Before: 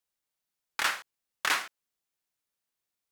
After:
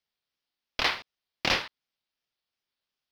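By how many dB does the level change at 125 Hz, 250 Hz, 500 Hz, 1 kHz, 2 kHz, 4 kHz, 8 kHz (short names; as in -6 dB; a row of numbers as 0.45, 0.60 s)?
n/a, +11.5 dB, +9.0 dB, 0.0 dB, 0.0 dB, +5.0 dB, -6.0 dB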